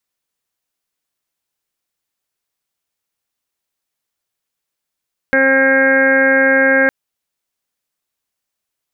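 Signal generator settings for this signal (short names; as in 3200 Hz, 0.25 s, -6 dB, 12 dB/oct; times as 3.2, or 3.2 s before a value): steady additive tone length 1.56 s, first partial 268 Hz, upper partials 4/-7.5/-14.5/-10/6/-5/-3/-19 dB, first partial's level -18 dB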